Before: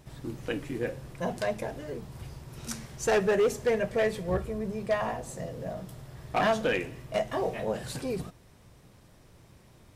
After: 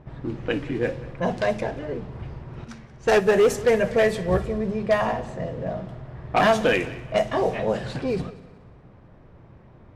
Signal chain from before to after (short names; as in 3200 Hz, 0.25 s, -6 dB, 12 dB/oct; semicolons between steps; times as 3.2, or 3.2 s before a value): low-pass opened by the level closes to 1400 Hz, open at -22.5 dBFS; multi-head echo 61 ms, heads first and third, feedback 50%, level -19.5 dB; 2.64–3.36 upward expander 1.5:1, over -37 dBFS; gain +7 dB